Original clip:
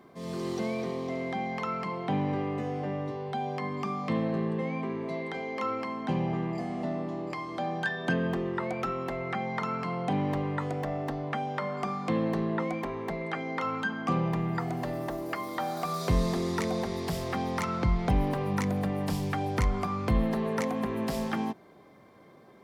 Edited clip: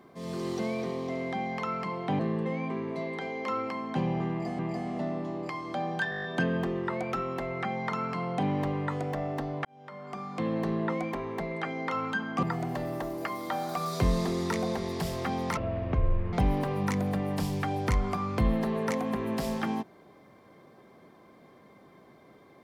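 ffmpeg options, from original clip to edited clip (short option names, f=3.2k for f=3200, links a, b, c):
-filter_complex "[0:a]asplit=14[a][b][c][d][e][f][g][h][i][j][k][l][m][n];[a]atrim=end=2.192[o];[b]atrim=start=4.318:end=6.722[p];[c]atrim=start=6.428:end=7.962[q];[d]atrim=start=7.938:end=7.962[r];[e]atrim=start=7.938:end=7.962[s];[f]atrim=start=7.938:end=7.962[t];[g]atrim=start=7.938:end=7.962[u];[h]atrim=start=7.938:end=7.962[v];[i]atrim=start=7.938:end=7.962[w];[j]atrim=start=7.938:end=11.35,asetpts=PTS-STARTPTS,afade=t=out:st=3.408:d=0.004:c=hsin[x];[k]atrim=start=11.35:end=14.132,asetpts=PTS-STARTPTS,afade=t=in:d=1.09[y];[l]atrim=start=14.508:end=17.654[z];[m]atrim=start=17.65:end=18.03,asetpts=PTS-STARTPTS,asetrate=22050,aresample=44100[aa];[n]atrim=start=18.026[ab];[o][p]acrossfade=d=0.004:c1=hsin:c2=hsin[ac];[ac][q]acrossfade=d=0.004:c1=hsin:c2=hsin[ad];[ad][r]acrossfade=d=0.004:c1=hsin:c2=hsin[ae];[ae][s]acrossfade=d=0.004:c1=hsin:c2=hsin[af];[af][t]acrossfade=d=0.004:c1=hsin:c2=hsin[ag];[ag][u]acrossfade=d=0.004:c1=hsin:c2=hsin[ah];[ah][v]acrossfade=d=0.004:c1=hsin:c2=hsin[ai];[ai][w]acrossfade=d=0.004:c1=hsin:c2=hsin[aj];[x][y]concat=n=2:v=0:a=1[ak];[aj][ak]acrossfade=d=0.004:c1=hsin:c2=hsin[al];[al][z]acrossfade=d=0.004:c1=hsin:c2=hsin[am];[am][aa]acrossfade=d=0.004:c1=hsin:c2=hsin[an];[an][ab]acrossfade=d=0.004:c1=hsin:c2=hsin"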